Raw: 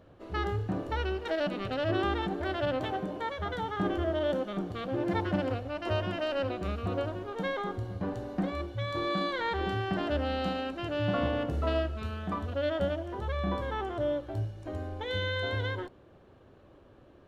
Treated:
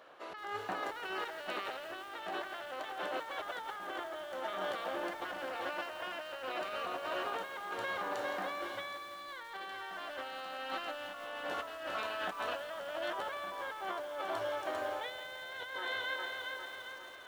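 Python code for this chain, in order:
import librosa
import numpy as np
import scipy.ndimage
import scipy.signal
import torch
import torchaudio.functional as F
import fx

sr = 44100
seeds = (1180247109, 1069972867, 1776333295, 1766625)

y = scipy.signal.sosfilt(scipy.signal.butter(2, 1000.0, 'highpass', fs=sr, output='sos'), x)
y = fx.echo_feedback(y, sr, ms=404, feedback_pct=56, wet_db=-10.0)
y = fx.over_compress(y, sr, threshold_db=-46.0, ratio=-1.0)
y = fx.high_shelf(y, sr, hz=2300.0, db=-5.5)
y = fx.echo_crushed(y, sr, ms=168, feedback_pct=80, bits=9, wet_db=-13)
y = F.gain(torch.from_numpy(y), 6.0).numpy()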